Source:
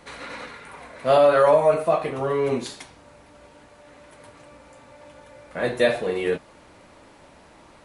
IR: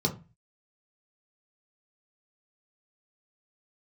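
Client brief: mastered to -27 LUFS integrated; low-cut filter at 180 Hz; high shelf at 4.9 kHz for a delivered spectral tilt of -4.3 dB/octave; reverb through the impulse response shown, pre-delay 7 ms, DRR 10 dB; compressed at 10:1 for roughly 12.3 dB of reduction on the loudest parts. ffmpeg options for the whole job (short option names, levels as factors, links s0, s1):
-filter_complex "[0:a]highpass=180,highshelf=f=4900:g=-7,acompressor=threshold=0.0562:ratio=10,asplit=2[s0][s1];[1:a]atrim=start_sample=2205,adelay=7[s2];[s1][s2]afir=irnorm=-1:irlink=0,volume=0.126[s3];[s0][s3]amix=inputs=2:normalize=0,volume=1.5"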